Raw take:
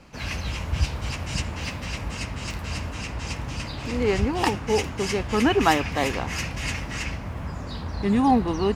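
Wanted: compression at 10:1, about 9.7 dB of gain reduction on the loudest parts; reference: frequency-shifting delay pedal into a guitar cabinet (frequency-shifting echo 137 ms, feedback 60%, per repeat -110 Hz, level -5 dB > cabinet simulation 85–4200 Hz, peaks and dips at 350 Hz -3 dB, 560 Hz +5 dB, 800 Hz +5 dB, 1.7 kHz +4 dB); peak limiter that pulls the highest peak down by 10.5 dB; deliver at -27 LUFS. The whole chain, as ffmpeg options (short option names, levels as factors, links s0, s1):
-filter_complex "[0:a]acompressor=threshold=0.0631:ratio=10,alimiter=limit=0.075:level=0:latency=1,asplit=9[s0][s1][s2][s3][s4][s5][s6][s7][s8];[s1]adelay=137,afreqshift=-110,volume=0.562[s9];[s2]adelay=274,afreqshift=-220,volume=0.339[s10];[s3]adelay=411,afreqshift=-330,volume=0.202[s11];[s4]adelay=548,afreqshift=-440,volume=0.122[s12];[s5]adelay=685,afreqshift=-550,volume=0.0733[s13];[s6]adelay=822,afreqshift=-660,volume=0.0437[s14];[s7]adelay=959,afreqshift=-770,volume=0.0263[s15];[s8]adelay=1096,afreqshift=-880,volume=0.0157[s16];[s0][s9][s10][s11][s12][s13][s14][s15][s16]amix=inputs=9:normalize=0,highpass=85,equalizer=f=350:t=q:w=4:g=-3,equalizer=f=560:t=q:w=4:g=5,equalizer=f=800:t=q:w=4:g=5,equalizer=f=1700:t=q:w=4:g=4,lowpass=f=4200:w=0.5412,lowpass=f=4200:w=1.3066,volume=1.58"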